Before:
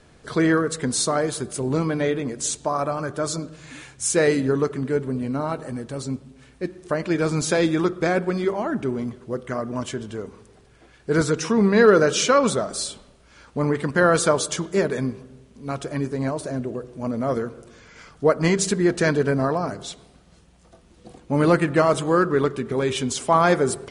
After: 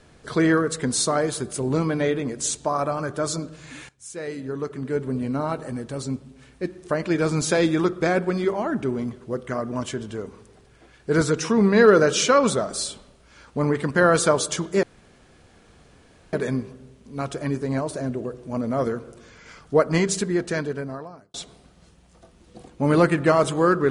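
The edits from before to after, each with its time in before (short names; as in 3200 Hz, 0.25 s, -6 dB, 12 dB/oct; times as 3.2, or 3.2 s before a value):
3.89–5.14 fade in quadratic, from -17.5 dB
14.83 insert room tone 1.50 s
18.29–19.84 fade out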